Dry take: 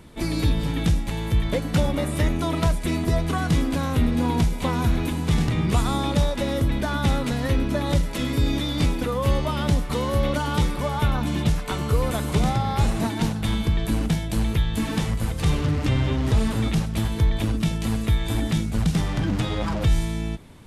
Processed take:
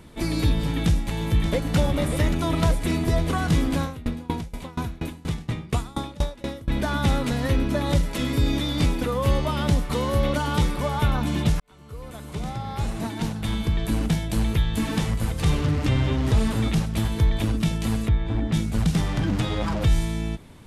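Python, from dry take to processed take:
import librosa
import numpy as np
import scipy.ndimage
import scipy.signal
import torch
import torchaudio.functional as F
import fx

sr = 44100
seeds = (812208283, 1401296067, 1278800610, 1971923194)

y = fx.echo_throw(x, sr, start_s=0.61, length_s=1.15, ms=580, feedback_pct=80, wet_db=-9.0)
y = fx.tremolo_decay(y, sr, direction='decaying', hz=4.2, depth_db=25, at=(3.82, 6.7))
y = fx.spacing_loss(y, sr, db_at_10k=30, at=(18.07, 18.52), fade=0.02)
y = fx.edit(y, sr, fx.fade_in_span(start_s=11.6, length_s=2.54), tone=tone)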